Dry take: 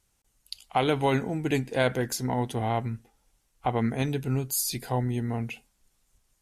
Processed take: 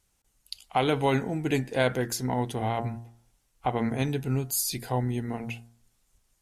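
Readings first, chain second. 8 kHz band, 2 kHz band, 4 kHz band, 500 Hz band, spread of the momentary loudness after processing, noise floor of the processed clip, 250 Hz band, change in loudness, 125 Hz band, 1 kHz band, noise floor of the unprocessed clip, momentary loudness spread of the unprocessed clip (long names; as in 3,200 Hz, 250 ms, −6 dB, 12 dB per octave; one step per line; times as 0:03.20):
0.0 dB, 0.0 dB, 0.0 dB, 0.0 dB, 11 LU, −72 dBFS, −0.5 dB, −0.5 dB, −0.5 dB, −0.5 dB, −72 dBFS, 11 LU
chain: hum removal 116.6 Hz, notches 16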